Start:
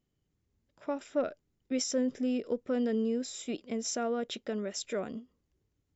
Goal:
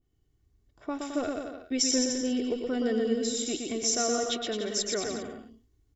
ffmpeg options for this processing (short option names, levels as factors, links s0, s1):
-filter_complex "[0:a]lowshelf=f=120:g=10.5,bandreject=f=2500:w=14,aecho=1:1:2.7:0.49,asplit=2[s0][s1];[s1]aecho=0:1:120|216|292.8|354.2|403.4:0.631|0.398|0.251|0.158|0.1[s2];[s0][s2]amix=inputs=2:normalize=0,adynamicequalizer=threshold=0.00355:dfrequency=2000:dqfactor=0.7:tfrequency=2000:tqfactor=0.7:attack=5:release=100:ratio=0.375:range=3.5:mode=boostabove:tftype=highshelf"